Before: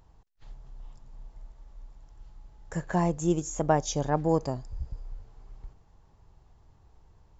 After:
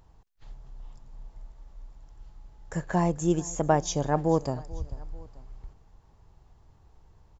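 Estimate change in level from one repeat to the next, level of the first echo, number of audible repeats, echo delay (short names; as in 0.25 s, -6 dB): -6.0 dB, -21.0 dB, 2, 0.44 s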